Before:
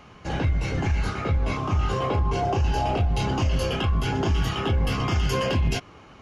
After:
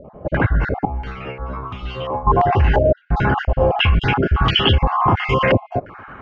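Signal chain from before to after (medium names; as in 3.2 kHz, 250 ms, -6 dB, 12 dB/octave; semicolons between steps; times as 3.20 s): random holes in the spectrogram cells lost 27%; 0.85–2.27 s: inharmonic resonator 62 Hz, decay 0.58 s, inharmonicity 0.002; step-sequenced low-pass 2.9 Hz 600–3200 Hz; trim +8 dB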